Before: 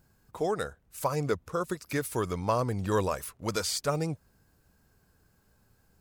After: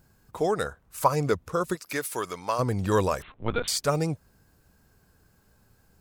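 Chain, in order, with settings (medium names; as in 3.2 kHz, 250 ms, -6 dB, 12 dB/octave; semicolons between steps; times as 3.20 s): 0.66–1.08 s: peaking EQ 1.1 kHz +7.5 dB 0.89 oct; 1.75–2.58 s: high-pass 410 Hz -> 1.1 kHz 6 dB/octave; 3.22–3.68 s: LPC vocoder at 8 kHz pitch kept; trim +4 dB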